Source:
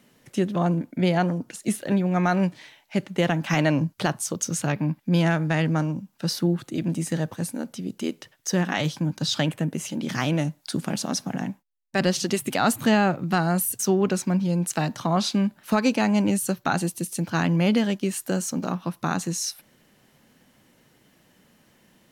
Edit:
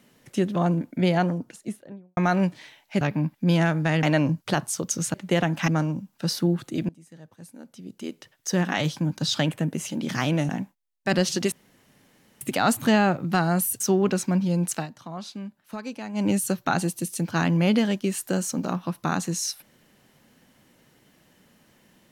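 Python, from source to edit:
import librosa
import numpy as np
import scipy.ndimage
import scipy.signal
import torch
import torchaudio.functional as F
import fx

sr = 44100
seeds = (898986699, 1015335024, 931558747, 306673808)

y = fx.studio_fade_out(x, sr, start_s=1.14, length_s=1.03)
y = fx.edit(y, sr, fx.swap(start_s=3.01, length_s=0.54, other_s=4.66, other_length_s=1.02),
    fx.fade_in_from(start_s=6.89, length_s=1.72, curve='qua', floor_db=-24.0),
    fx.cut(start_s=10.49, length_s=0.88),
    fx.insert_room_tone(at_s=12.4, length_s=0.89),
    fx.fade_down_up(start_s=14.72, length_s=1.54, db=-13.5, fade_s=0.14), tone=tone)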